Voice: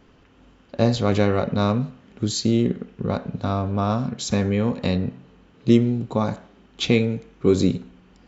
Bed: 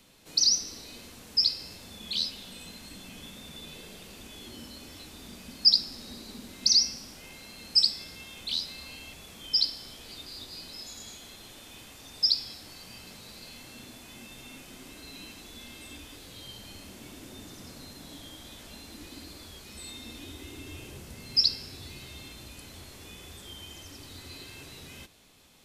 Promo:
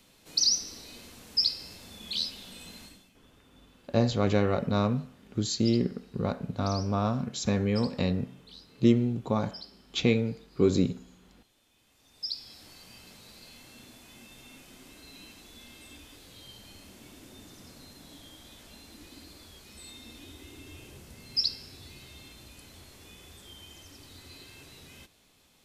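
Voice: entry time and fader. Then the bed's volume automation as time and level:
3.15 s, −5.5 dB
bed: 0:02.83 −1.5 dB
0:03.15 −20 dB
0:11.76 −20 dB
0:12.63 −4.5 dB

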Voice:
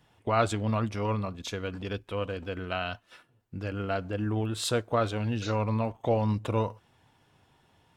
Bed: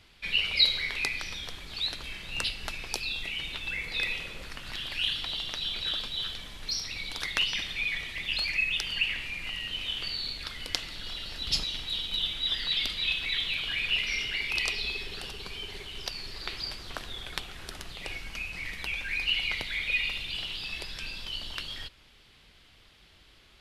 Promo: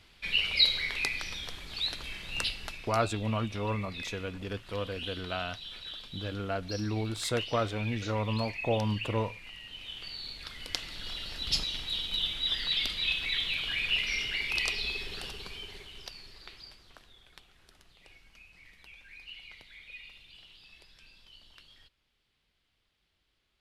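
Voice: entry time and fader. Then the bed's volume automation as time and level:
2.60 s, −3.0 dB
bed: 0:02.51 −1 dB
0:03.03 −11 dB
0:09.65 −11 dB
0:11.07 −1 dB
0:15.27 −1 dB
0:17.19 −19 dB

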